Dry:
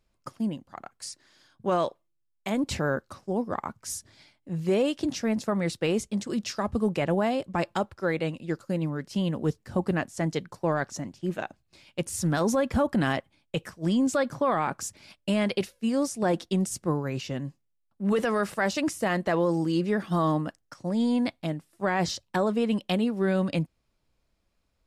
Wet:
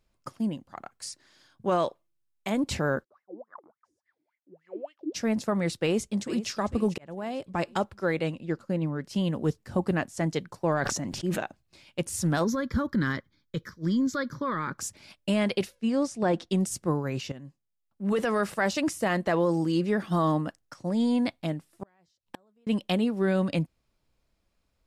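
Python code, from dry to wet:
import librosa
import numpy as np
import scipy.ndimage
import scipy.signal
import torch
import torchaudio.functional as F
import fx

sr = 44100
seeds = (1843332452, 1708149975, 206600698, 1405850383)

y = fx.wah_lfo(x, sr, hz=3.5, low_hz=300.0, high_hz=2100.0, q=18.0, at=(3.03, 5.14), fade=0.02)
y = fx.echo_throw(y, sr, start_s=5.76, length_s=0.72, ms=450, feedback_pct=50, wet_db=-14.5)
y = fx.high_shelf(y, sr, hz=4500.0, db=-10.0, at=(8.34, 9.04))
y = fx.sustainer(y, sr, db_per_s=35.0, at=(10.62, 11.39))
y = fx.fixed_phaser(y, sr, hz=2700.0, stages=6, at=(12.44, 14.78))
y = fx.air_absorb(y, sr, metres=65.0, at=(15.75, 16.5))
y = fx.gate_flip(y, sr, shuts_db=-23.0, range_db=-40, at=(21.71, 22.67))
y = fx.edit(y, sr, fx.fade_in_span(start_s=6.98, length_s=0.74),
    fx.fade_in_from(start_s=17.32, length_s=1.06, floor_db=-13.0), tone=tone)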